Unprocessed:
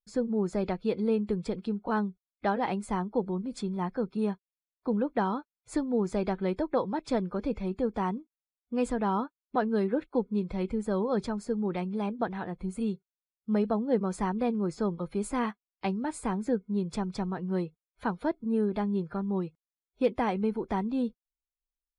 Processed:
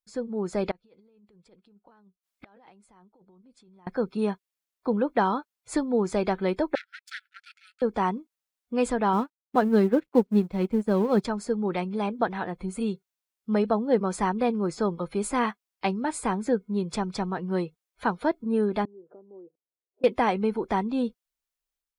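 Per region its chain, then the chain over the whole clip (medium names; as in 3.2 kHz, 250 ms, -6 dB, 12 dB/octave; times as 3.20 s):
0.71–3.87 s: compressor with a negative ratio -33 dBFS + inverted gate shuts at -37 dBFS, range -27 dB
6.75–7.82 s: treble shelf 7.8 kHz +10.5 dB + power-law waveshaper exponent 2 + brick-wall FIR high-pass 1.3 kHz
9.13–11.25 s: companding laws mixed up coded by A + peaking EQ 200 Hz +8 dB 2.2 oct + upward expansion, over -39 dBFS
18.85–20.04 s: compression 5:1, threshold -44 dBFS + Butterworth band-pass 430 Hz, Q 1.4
whole clip: bass shelf 300 Hz -8 dB; level rider gain up to 7 dB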